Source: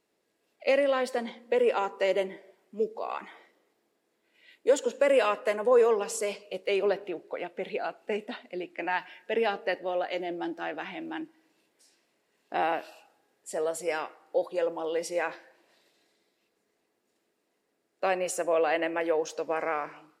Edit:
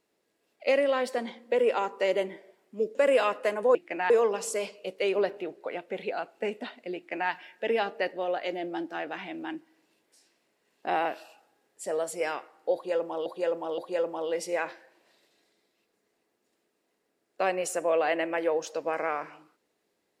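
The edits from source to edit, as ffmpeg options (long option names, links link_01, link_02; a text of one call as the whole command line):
ffmpeg -i in.wav -filter_complex "[0:a]asplit=6[link_01][link_02][link_03][link_04][link_05][link_06];[link_01]atrim=end=2.952[link_07];[link_02]atrim=start=4.968:end=5.772[link_08];[link_03]atrim=start=8.628:end=8.982[link_09];[link_04]atrim=start=5.768:end=14.932[link_10];[link_05]atrim=start=14.408:end=14.932[link_11];[link_06]atrim=start=14.408[link_12];[link_07][link_08]acrossfade=duration=0.004:curve1=hsin:curve2=hsin[link_13];[link_13][link_09]acrossfade=duration=0.004:curve1=hsin:curve2=hsin[link_14];[link_14][link_10]acrossfade=duration=0.004:curve1=hsin:curve2=hsin[link_15];[link_15][link_11]acrossfade=duration=0.004:curve1=hsin:curve2=hsin[link_16];[link_16][link_12]acrossfade=duration=0.004:curve1=hsin:curve2=hsin" out.wav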